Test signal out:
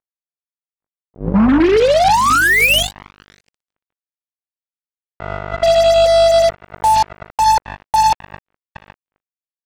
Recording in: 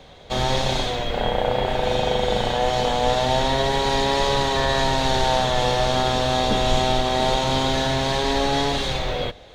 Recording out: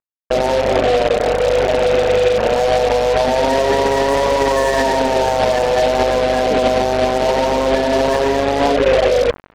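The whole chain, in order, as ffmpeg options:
ffmpeg -i in.wav -filter_complex "[0:a]highpass=frequency=230:width=0.5412,highpass=frequency=230:width=1.3066,equalizer=frequency=340:width_type=q:width=4:gain=-4,equalizer=frequency=490:width_type=q:width=4:gain=4,equalizer=frequency=830:width_type=q:width=4:gain=-10,equalizer=frequency=1300:width_type=q:width=4:gain=-7,lowpass=frequency=2300:width=0.5412,lowpass=frequency=2300:width=1.3066,afftfilt=real='re*gte(hypot(re,im),0.0891)':imag='im*gte(hypot(re,im),0.0891)':win_size=1024:overlap=0.75,bandreject=frequency=60:width_type=h:width=6,bandreject=frequency=120:width_type=h:width=6,bandreject=frequency=180:width_type=h:width=6,bandreject=frequency=240:width_type=h:width=6,bandreject=frequency=300:width_type=h:width=6,bandreject=frequency=360:width_type=h:width=6,bandreject=frequency=420:width_type=h:width=6,adynamicequalizer=threshold=0.0158:dfrequency=870:dqfactor=1.1:tfrequency=870:tqfactor=1.1:attack=5:release=100:ratio=0.375:range=2.5:mode=boostabove:tftype=bell,acompressor=threshold=-25dB:ratio=16,aeval=exprs='val(0)+0.00794*(sin(2*PI*50*n/s)+sin(2*PI*2*50*n/s)/2+sin(2*PI*3*50*n/s)/3+sin(2*PI*4*50*n/s)/4+sin(2*PI*5*50*n/s)/5)':channel_layout=same,afftdn=noise_reduction=21:noise_floor=-40,flanger=delay=1.8:depth=8.5:regen=67:speed=0.65:shape=sinusoidal,asplit=2[link_01][link_02];[link_02]adelay=812,lowpass=frequency=880:poles=1,volume=-15dB,asplit=2[link_03][link_04];[link_04]adelay=812,lowpass=frequency=880:poles=1,volume=0.18[link_05];[link_01][link_03][link_05]amix=inputs=3:normalize=0,acrusher=bits=5:mix=0:aa=0.5,alimiter=level_in=30.5dB:limit=-1dB:release=50:level=0:latency=1,volume=-6.5dB" out.wav

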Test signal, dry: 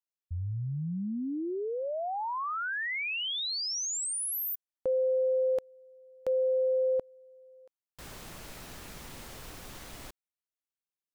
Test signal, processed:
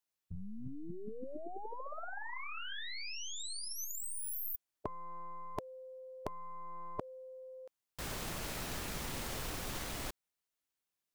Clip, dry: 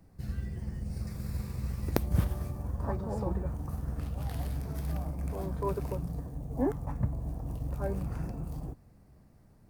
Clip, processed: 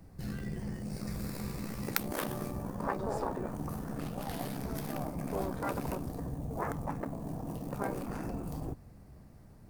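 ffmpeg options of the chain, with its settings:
ffmpeg -i in.wav -af "aeval=exprs='0.596*(cos(1*acos(clip(val(0)/0.596,-1,1)))-cos(1*PI/2))+0.133*(cos(4*acos(clip(val(0)/0.596,-1,1)))-cos(4*PI/2))+0.00531*(cos(5*acos(clip(val(0)/0.596,-1,1)))-cos(5*PI/2))+0.00531*(cos(7*acos(clip(val(0)/0.596,-1,1)))-cos(7*PI/2))+0.0531*(cos(8*acos(clip(val(0)/0.596,-1,1)))-cos(8*PI/2))':channel_layout=same,afftfilt=real='re*lt(hypot(re,im),0.112)':imag='im*lt(hypot(re,im),0.112)':win_size=1024:overlap=0.75,volume=5dB" out.wav

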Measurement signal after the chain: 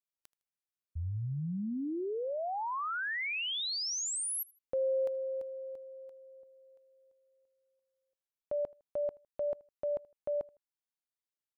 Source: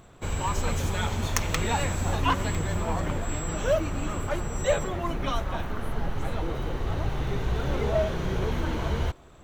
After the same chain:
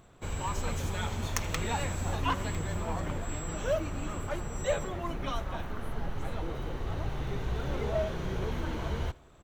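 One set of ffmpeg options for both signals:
ffmpeg -i in.wav -af "aecho=1:1:79|158:0.0631|0.0215,volume=-5.5dB" out.wav

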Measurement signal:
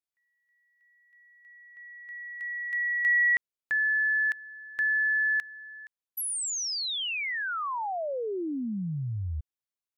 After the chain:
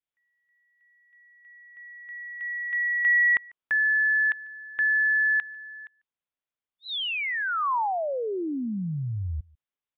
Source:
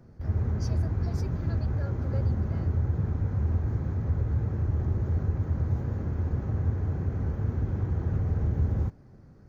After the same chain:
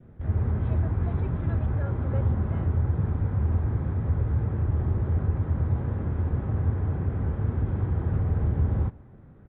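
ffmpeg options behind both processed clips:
ffmpeg -i in.wav -filter_complex "[0:a]adynamicequalizer=threshold=0.00447:dfrequency=1000:dqfactor=1.6:tfrequency=1000:tqfactor=1.6:attack=5:release=100:ratio=0.375:range=2.5:mode=boostabove:tftype=bell,asplit=2[link_01][link_02];[link_02]adelay=145.8,volume=-26dB,highshelf=frequency=4000:gain=-3.28[link_03];[link_01][link_03]amix=inputs=2:normalize=0,aresample=8000,aresample=44100,volume=2dB" out.wav

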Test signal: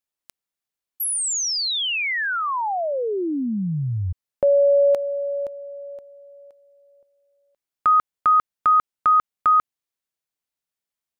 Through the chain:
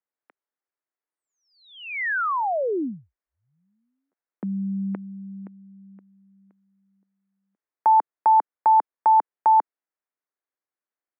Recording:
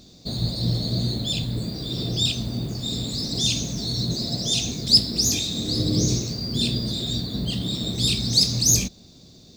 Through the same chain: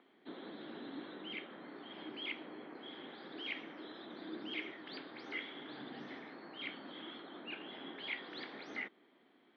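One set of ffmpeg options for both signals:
ffmpeg -i in.wav -af "highpass=frequency=480:width_type=q:width=0.5412,highpass=frequency=480:width_type=q:width=1.307,lowpass=frequency=2400:width_type=q:width=0.5176,lowpass=frequency=2400:width_type=q:width=0.7071,lowpass=frequency=2400:width_type=q:width=1.932,afreqshift=-370,highpass=frequency=260:width=0.5412,highpass=frequency=260:width=1.3066" out.wav

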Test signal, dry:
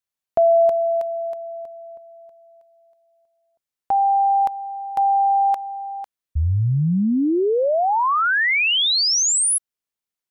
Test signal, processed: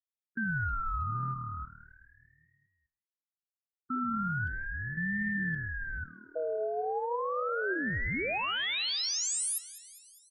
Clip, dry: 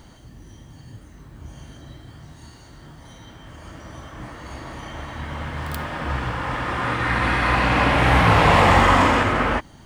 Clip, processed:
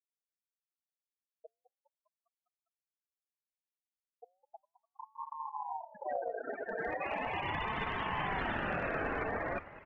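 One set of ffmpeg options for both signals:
ffmpeg -i in.wav -filter_complex "[0:a]afftfilt=real='re*gte(hypot(re,im),0.224)':imag='im*gte(hypot(re,im),0.224)':win_size=1024:overlap=0.75,equalizer=frequency=220:width_type=o:width=0.24:gain=-8.5,areverse,acompressor=threshold=-24dB:ratio=6:attack=0.27:release=82:knee=1:detection=rms,areverse,flanger=delay=4.1:depth=7.2:regen=90:speed=1.5:shape=triangular,asplit=2[link_01][link_02];[link_02]asplit=6[link_03][link_04][link_05][link_06][link_07][link_08];[link_03]adelay=202,afreqshift=38,volume=-17dB[link_09];[link_04]adelay=404,afreqshift=76,volume=-21.6dB[link_10];[link_05]adelay=606,afreqshift=114,volume=-26.2dB[link_11];[link_06]adelay=808,afreqshift=152,volume=-30.7dB[link_12];[link_07]adelay=1010,afreqshift=190,volume=-35.3dB[link_13];[link_08]adelay=1212,afreqshift=228,volume=-39.9dB[link_14];[link_09][link_10][link_11][link_12][link_13][link_14]amix=inputs=6:normalize=0[link_15];[link_01][link_15]amix=inputs=2:normalize=0,aeval=exprs='val(0)*sin(2*PI*770*n/s+770*0.3/0.38*sin(2*PI*0.38*n/s))':channel_layout=same,volume=1dB" out.wav

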